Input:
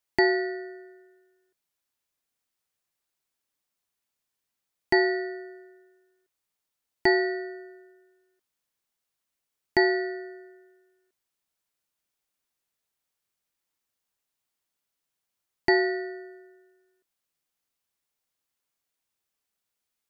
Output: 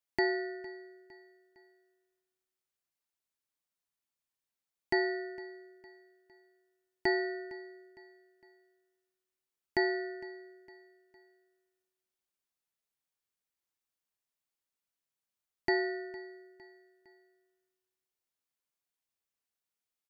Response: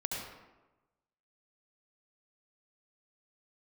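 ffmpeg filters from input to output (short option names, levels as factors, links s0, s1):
-af "aecho=1:1:458|916|1374:0.1|0.045|0.0202,volume=0.398"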